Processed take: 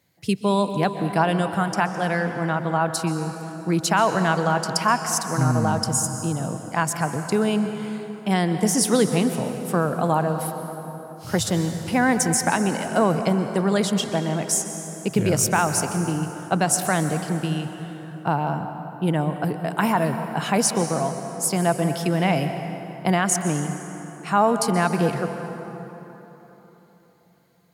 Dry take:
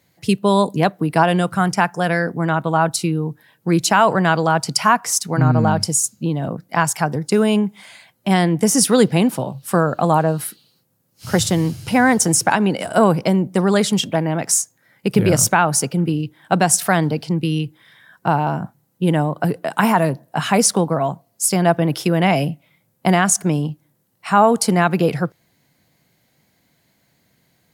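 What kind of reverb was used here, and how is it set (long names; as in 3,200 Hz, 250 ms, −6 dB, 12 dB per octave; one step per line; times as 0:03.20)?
dense smooth reverb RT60 3.8 s, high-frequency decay 0.55×, pre-delay 115 ms, DRR 7.5 dB
level −5.5 dB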